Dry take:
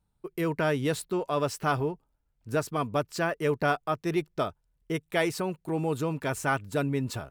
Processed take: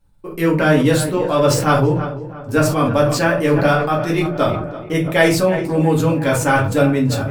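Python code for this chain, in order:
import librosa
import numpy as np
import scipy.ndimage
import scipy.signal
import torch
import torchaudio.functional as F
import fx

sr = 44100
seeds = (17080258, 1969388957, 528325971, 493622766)

p1 = x + fx.echo_filtered(x, sr, ms=334, feedback_pct=54, hz=2300.0, wet_db=-14.0, dry=0)
p2 = fx.room_shoebox(p1, sr, seeds[0], volume_m3=130.0, walls='furnished', distance_m=2.2)
p3 = fx.sustainer(p2, sr, db_per_s=51.0)
y = p3 * librosa.db_to_amplitude(6.5)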